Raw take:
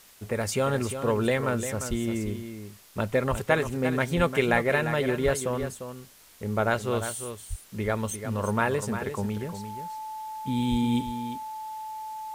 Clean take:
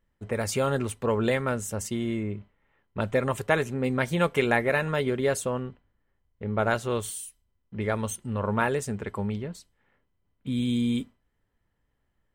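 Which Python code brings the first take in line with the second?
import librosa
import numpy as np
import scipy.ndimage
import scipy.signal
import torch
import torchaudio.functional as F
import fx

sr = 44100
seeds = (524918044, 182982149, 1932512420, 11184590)

y = fx.notch(x, sr, hz=870.0, q=30.0)
y = fx.fix_deplosive(y, sr, at_s=(1.89, 3.3, 4.16, 5.24, 7.49, 10.7))
y = fx.noise_reduce(y, sr, print_start_s=5.92, print_end_s=6.42, reduce_db=29.0)
y = fx.fix_echo_inverse(y, sr, delay_ms=349, level_db=-9.5)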